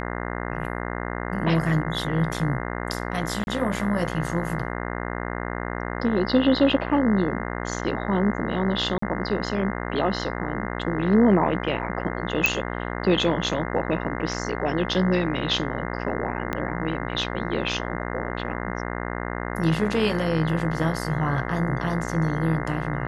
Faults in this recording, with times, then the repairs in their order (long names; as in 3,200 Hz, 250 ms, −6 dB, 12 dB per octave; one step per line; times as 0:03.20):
mains buzz 60 Hz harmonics 35 −30 dBFS
0:03.44–0:03.47: drop-out 31 ms
0:08.98–0:09.02: drop-out 44 ms
0:12.46: click −4 dBFS
0:16.53: click −13 dBFS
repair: click removal
hum removal 60 Hz, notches 35
repair the gap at 0:03.44, 31 ms
repair the gap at 0:08.98, 44 ms